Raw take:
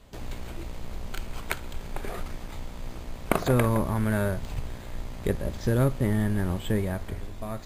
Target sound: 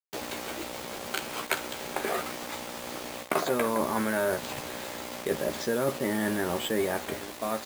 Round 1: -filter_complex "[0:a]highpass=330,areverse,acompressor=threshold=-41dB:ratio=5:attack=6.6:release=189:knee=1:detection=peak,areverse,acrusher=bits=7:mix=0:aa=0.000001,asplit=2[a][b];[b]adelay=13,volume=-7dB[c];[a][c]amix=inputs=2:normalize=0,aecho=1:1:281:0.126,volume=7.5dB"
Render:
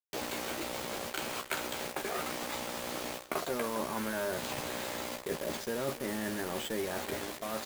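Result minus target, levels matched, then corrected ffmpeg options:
compressor: peak gain reduction +7.5 dB; echo-to-direct +10 dB
-filter_complex "[0:a]highpass=330,areverse,acompressor=threshold=-31.5dB:ratio=5:attack=6.6:release=189:knee=1:detection=peak,areverse,acrusher=bits=7:mix=0:aa=0.000001,asplit=2[a][b];[b]adelay=13,volume=-7dB[c];[a][c]amix=inputs=2:normalize=0,aecho=1:1:281:0.0398,volume=7.5dB"

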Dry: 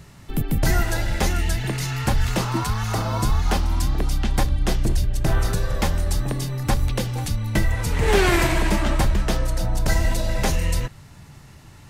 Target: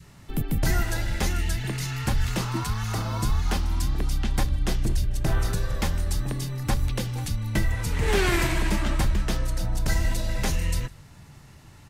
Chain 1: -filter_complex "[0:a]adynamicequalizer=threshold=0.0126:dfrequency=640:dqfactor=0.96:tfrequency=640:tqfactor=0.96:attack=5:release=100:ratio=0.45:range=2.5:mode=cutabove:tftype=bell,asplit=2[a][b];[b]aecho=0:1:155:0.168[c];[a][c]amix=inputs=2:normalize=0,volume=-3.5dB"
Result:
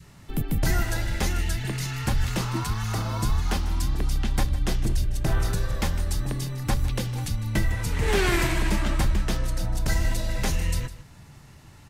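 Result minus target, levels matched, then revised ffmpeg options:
echo-to-direct +9.5 dB
-filter_complex "[0:a]adynamicequalizer=threshold=0.0126:dfrequency=640:dqfactor=0.96:tfrequency=640:tqfactor=0.96:attack=5:release=100:ratio=0.45:range=2.5:mode=cutabove:tftype=bell,asplit=2[a][b];[b]aecho=0:1:155:0.0562[c];[a][c]amix=inputs=2:normalize=0,volume=-3.5dB"

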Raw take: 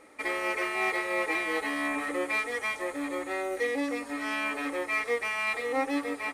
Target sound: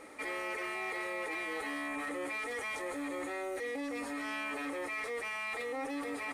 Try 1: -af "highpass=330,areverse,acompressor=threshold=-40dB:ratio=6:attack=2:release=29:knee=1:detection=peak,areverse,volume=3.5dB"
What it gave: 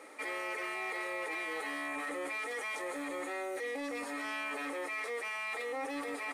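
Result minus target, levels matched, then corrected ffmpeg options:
250 Hz band -3.0 dB
-af "areverse,acompressor=threshold=-40dB:ratio=6:attack=2:release=29:knee=1:detection=peak,areverse,volume=3.5dB"

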